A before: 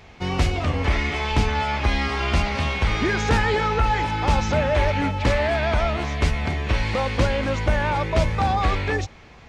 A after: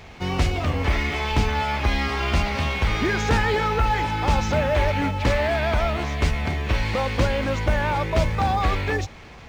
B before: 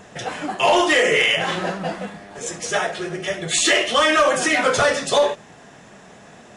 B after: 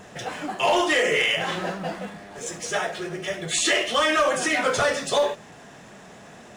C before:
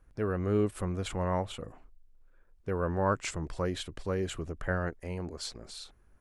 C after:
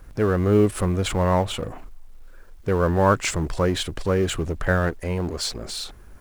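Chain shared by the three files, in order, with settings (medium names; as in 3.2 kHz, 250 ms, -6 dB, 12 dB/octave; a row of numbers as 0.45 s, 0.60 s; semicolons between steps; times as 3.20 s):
companding laws mixed up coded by mu; normalise loudness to -23 LUFS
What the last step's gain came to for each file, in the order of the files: -1.0 dB, -5.0 dB, +9.5 dB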